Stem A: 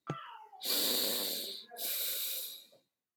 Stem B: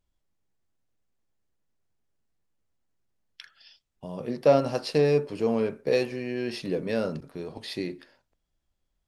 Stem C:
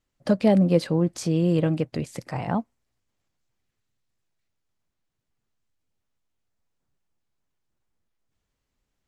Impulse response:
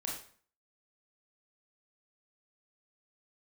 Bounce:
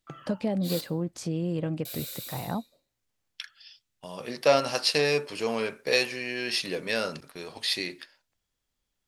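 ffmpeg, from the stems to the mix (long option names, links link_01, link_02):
-filter_complex "[0:a]volume=-5dB,asplit=3[link_01][link_02][link_03];[link_01]atrim=end=0.81,asetpts=PTS-STARTPTS,afade=type=out:start_time=0.806:duration=0.004:curve=hsin[link_04];[link_02]atrim=start=0.81:end=1.85,asetpts=PTS-STARTPTS,volume=0[link_05];[link_03]atrim=start=1.85,asetpts=PTS-STARTPTS,afade=type=in:duration=0.004:curve=hsin[link_06];[link_04][link_05][link_06]concat=n=3:v=0:a=1,asplit=2[link_07][link_08];[link_08]volume=-12.5dB[link_09];[1:a]agate=range=-7dB:threshold=-47dB:ratio=16:detection=peak,tiltshelf=frequency=850:gain=-10,volume=1.5dB[link_10];[2:a]acompressor=threshold=-19dB:ratio=6,volume=-5.5dB[link_11];[3:a]atrim=start_sample=2205[link_12];[link_09][link_12]afir=irnorm=-1:irlink=0[link_13];[link_07][link_10][link_11][link_13]amix=inputs=4:normalize=0"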